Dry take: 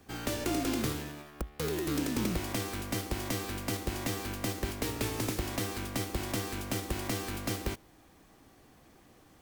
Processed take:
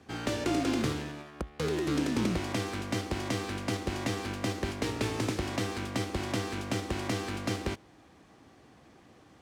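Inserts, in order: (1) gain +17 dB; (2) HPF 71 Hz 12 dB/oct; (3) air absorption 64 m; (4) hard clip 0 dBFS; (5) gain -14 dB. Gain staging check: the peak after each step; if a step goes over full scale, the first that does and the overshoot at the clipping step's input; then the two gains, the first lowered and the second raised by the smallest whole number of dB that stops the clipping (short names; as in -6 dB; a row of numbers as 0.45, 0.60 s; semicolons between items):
-0.5, -1.0, -3.0, -3.0, -17.0 dBFS; no overload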